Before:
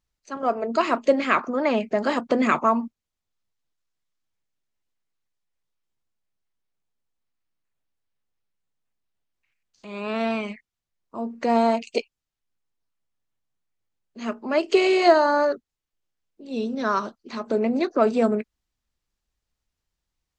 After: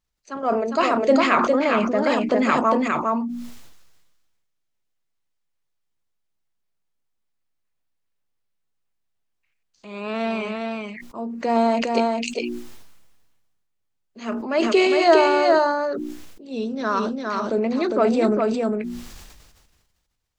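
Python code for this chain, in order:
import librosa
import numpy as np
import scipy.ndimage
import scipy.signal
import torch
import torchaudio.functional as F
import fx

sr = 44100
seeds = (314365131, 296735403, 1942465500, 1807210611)

p1 = fx.hum_notches(x, sr, base_hz=60, count=6)
p2 = p1 + fx.echo_single(p1, sr, ms=406, db=-3.5, dry=0)
y = fx.sustainer(p2, sr, db_per_s=38.0)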